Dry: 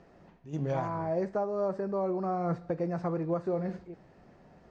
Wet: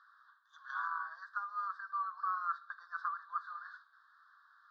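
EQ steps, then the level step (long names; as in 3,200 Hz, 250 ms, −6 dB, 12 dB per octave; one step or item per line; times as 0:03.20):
Chebyshev high-pass with heavy ripple 1,100 Hz, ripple 3 dB
elliptic band-stop filter 1,600–3,600 Hz, stop band 40 dB
high-frequency loss of the air 410 metres
+13.5 dB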